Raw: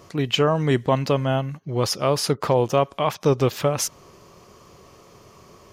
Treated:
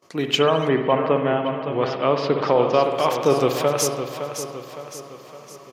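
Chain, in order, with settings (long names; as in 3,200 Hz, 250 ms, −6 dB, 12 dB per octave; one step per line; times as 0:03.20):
high-pass filter 230 Hz 12 dB per octave
repeating echo 562 ms, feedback 47%, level −9 dB
noise gate −49 dBFS, range −23 dB
0:00.67–0:02.83: low-pass filter 2,200 Hz → 4,500 Hz 24 dB per octave
spring reverb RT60 1.4 s, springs 56 ms, chirp 45 ms, DRR 5.5 dB
level +1.5 dB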